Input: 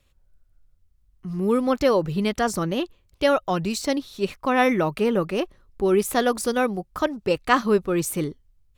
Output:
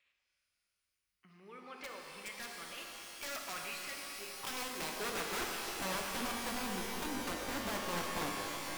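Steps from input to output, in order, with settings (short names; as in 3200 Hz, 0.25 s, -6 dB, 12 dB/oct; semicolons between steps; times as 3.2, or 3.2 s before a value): compressor 2.5:1, threshold -37 dBFS, peak gain reduction 16 dB; 3.23–3.75 overdrive pedal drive 24 dB, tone 1100 Hz, clips at -21 dBFS; band-pass sweep 2200 Hz -> 270 Hz, 3.9–5.83; wrapped overs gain 35.5 dB; shimmer reverb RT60 3.8 s, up +12 st, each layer -2 dB, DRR 0.5 dB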